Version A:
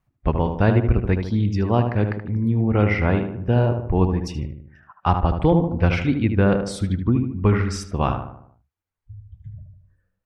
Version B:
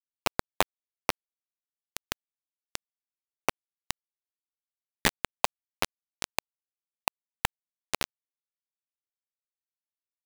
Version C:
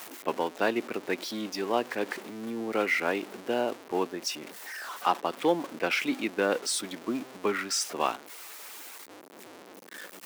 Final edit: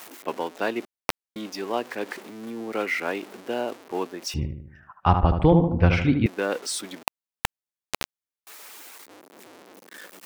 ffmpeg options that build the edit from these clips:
-filter_complex "[1:a]asplit=2[a][b];[2:a]asplit=4[c][d][e][f];[c]atrim=end=0.852[g];[a]atrim=start=0.848:end=1.362[h];[d]atrim=start=1.358:end=4.342[i];[0:a]atrim=start=4.338:end=6.262[j];[e]atrim=start=6.258:end=7.032[k];[b]atrim=start=7.028:end=8.472[l];[f]atrim=start=8.468[m];[g][h]acrossfade=d=0.004:c1=hsin:c2=hsin[n];[n][i]acrossfade=d=0.004:c1=hsin:c2=hsin[o];[o][j]acrossfade=d=0.004:c1=hsin:c2=hsin[p];[p][k]acrossfade=d=0.004:c1=hsin:c2=hsin[q];[q][l]acrossfade=d=0.004:c1=hsin:c2=hsin[r];[r][m]acrossfade=d=0.004:c1=hsin:c2=hsin"

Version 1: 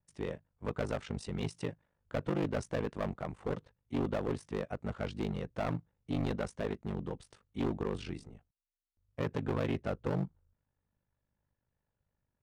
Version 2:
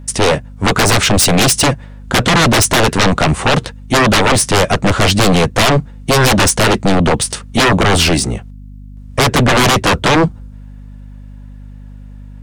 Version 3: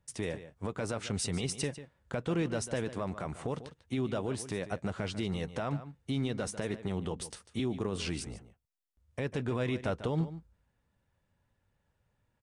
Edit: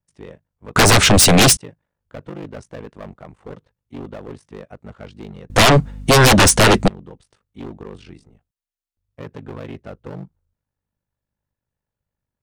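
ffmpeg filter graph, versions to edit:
-filter_complex "[1:a]asplit=2[a][b];[0:a]asplit=3[c][d][e];[c]atrim=end=0.762[f];[a]atrim=start=0.758:end=1.572[g];[d]atrim=start=1.568:end=5.502[h];[b]atrim=start=5.498:end=6.882[i];[e]atrim=start=6.878[j];[f][g]acrossfade=d=0.004:c1=hsin:c2=hsin[k];[k][h]acrossfade=d=0.004:c1=hsin:c2=hsin[l];[l][i]acrossfade=d=0.004:c1=hsin:c2=hsin[m];[m][j]acrossfade=d=0.004:c1=hsin:c2=hsin"

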